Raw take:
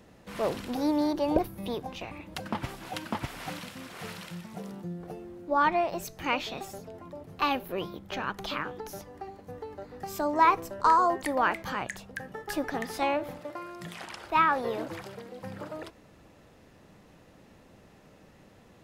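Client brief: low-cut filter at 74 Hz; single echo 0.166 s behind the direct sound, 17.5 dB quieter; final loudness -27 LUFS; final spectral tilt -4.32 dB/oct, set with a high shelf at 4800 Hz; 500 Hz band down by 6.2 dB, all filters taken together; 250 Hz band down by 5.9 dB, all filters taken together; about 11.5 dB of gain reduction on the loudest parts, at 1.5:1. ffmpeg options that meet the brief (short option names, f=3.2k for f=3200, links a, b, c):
-af "highpass=74,equalizer=f=250:t=o:g=-5,equalizer=f=500:t=o:g=-7,highshelf=f=4.8k:g=-5,acompressor=threshold=-52dB:ratio=1.5,aecho=1:1:166:0.133,volume=16dB"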